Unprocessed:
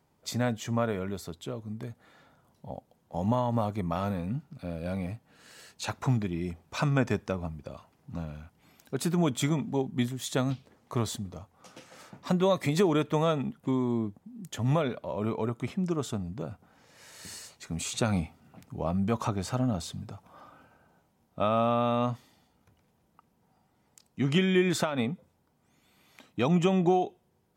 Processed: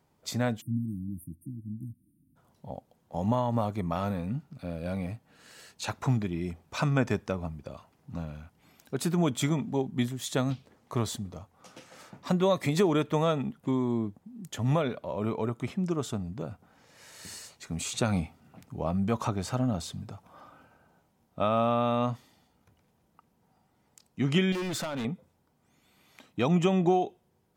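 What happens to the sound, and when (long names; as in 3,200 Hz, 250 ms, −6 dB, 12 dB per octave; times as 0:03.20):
0:00.61–0:02.36: time-frequency box erased 330–8,500 Hz
0:24.52–0:25.05: gain into a clipping stage and back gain 30.5 dB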